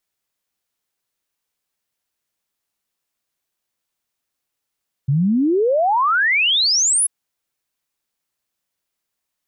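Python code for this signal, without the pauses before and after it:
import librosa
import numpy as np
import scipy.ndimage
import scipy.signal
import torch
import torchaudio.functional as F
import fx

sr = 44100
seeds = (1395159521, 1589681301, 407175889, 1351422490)

y = fx.ess(sr, length_s=1.99, from_hz=130.0, to_hz=11000.0, level_db=-13.5)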